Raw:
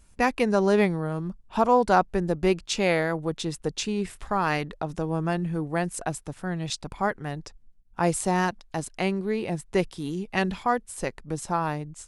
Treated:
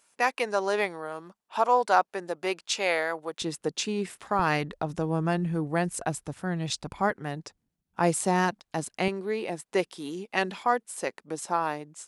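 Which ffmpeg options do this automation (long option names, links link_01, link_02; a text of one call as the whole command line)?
ffmpeg -i in.wav -af "asetnsamples=nb_out_samples=441:pad=0,asendcmd='3.42 highpass f 210;4.39 highpass f 58;7.1 highpass f 140;9.08 highpass f 320',highpass=570" out.wav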